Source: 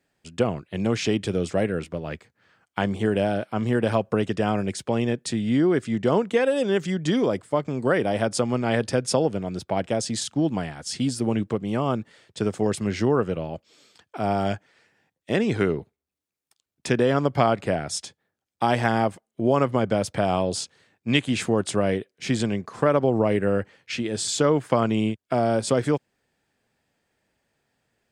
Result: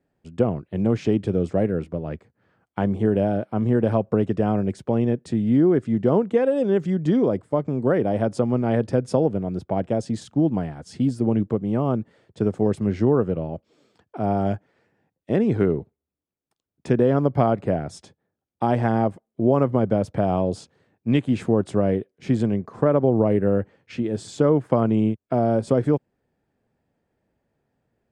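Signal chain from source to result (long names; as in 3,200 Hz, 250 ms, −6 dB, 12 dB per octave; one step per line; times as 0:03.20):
tilt shelving filter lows +9.5 dB, about 1,400 Hz
level −5.5 dB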